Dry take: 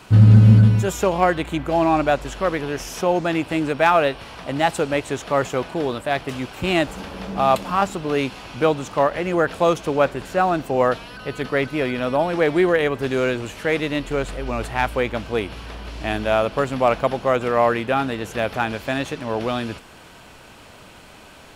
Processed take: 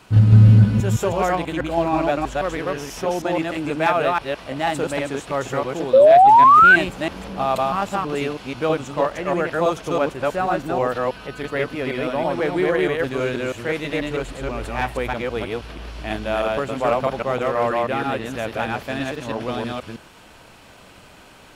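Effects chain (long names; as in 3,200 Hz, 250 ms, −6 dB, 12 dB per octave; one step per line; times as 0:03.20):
delay that plays each chunk backwards 161 ms, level −0.5 dB
sound drawn into the spectrogram rise, 0:05.93–0:06.76, 510–1,600 Hz −5 dBFS
level −4.5 dB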